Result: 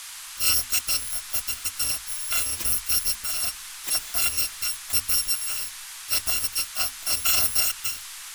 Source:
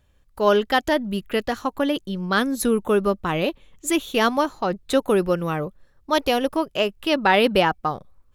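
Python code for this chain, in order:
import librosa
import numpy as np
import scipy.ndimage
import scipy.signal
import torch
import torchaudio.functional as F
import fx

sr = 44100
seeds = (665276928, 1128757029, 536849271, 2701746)

y = fx.bit_reversed(x, sr, seeds[0], block=256)
y = fx.hum_notches(y, sr, base_hz=50, count=5)
y = fx.dmg_noise_band(y, sr, seeds[1], low_hz=990.0, high_hz=12000.0, level_db=-35.0)
y = y * librosa.db_to_amplitude(-4.5)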